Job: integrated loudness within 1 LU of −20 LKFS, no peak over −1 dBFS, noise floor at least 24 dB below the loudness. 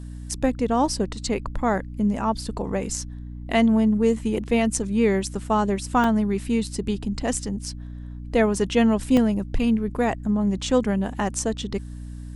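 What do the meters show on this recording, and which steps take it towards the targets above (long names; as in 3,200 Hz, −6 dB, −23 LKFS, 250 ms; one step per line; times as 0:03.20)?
number of dropouts 2; longest dropout 2.8 ms; mains hum 60 Hz; hum harmonics up to 300 Hz; level of the hum −33 dBFS; integrated loudness −23.5 LKFS; sample peak −6.5 dBFS; target loudness −20.0 LKFS
→ repair the gap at 0:06.04/0:09.17, 2.8 ms
hum removal 60 Hz, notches 5
level +3.5 dB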